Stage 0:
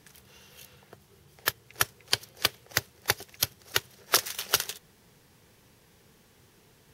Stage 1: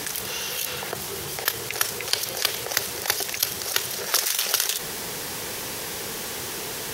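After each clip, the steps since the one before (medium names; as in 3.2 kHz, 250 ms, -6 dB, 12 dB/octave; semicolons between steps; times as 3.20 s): tone controls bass -12 dB, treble +4 dB; level flattener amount 70%; trim -3 dB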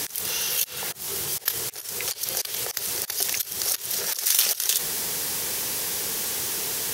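slow attack 194 ms; treble shelf 4 kHz +10.5 dB; trim -3 dB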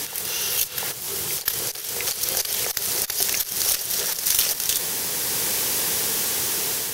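level rider gain up to 4 dB; Chebyshev shaper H 4 -24 dB, 6 -22 dB, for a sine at -1.5 dBFS; reverse echo 699 ms -7 dB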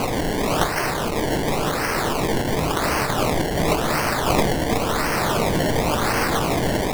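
zero-crossing glitches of -19 dBFS; decimation with a swept rate 24×, swing 100% 0.93 Hz; reverberation RT60 0.35 s, pre-delay 7 ms, DRR 11.5 dB; trim -2.5 dB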